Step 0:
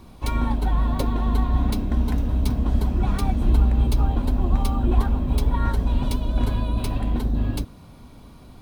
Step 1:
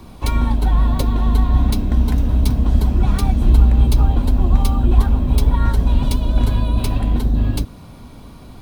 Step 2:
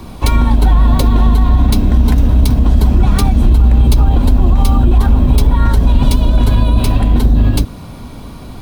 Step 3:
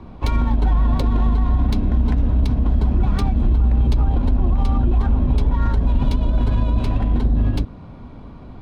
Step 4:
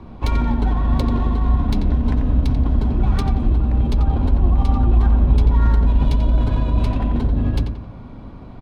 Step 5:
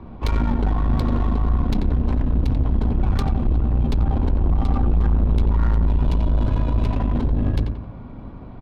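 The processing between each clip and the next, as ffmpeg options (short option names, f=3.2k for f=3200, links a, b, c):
-filter_complex "[0:a]acrossover=split=180|3000[a][b][c];[b]acompressor=threshold=-34dB:ratio=2[d];[a][d][c]amix=inputs=3:normalize=0,volume=6.5dB"
-af "alimiter=level_in=9.5dB:limit=-1dB:release=50:level=0:latency=1,volume=-1dB"
-af "adynamicsmooth=sensitivity=1:basefreq=2.1k,volume=-7.5dB"
-filter_complex "[0:a]asplit=2[a][b];[b]adelay=89,lowpass=f=3k:p=1,volume=-6dB,asplit=2[c][d];[d]adelay=89,lowpass=f=3k:p=1,volume=0.45,asplit=2[e][f];[f]adelay=89,lowpass=f=3k:p=1,volume=0.45,asplit=2[g][h];[h]adelay=89,lowpass=f=3k:p=1,volume=0.45,asplit=2[i][j];[j]adelay=89,lowpass=f=3k:p=1,volume=0.45[k];[a][c][e][g][i][k]amix=inputs=6:normalize=0"
-af "adynamicsmooth=sensitivity=6:basefreq=3.3k,aeval=exprs='(tanh(6.31*val(0)+0.5)-tanh(0.5))/6.31':c=same,volume=2dB"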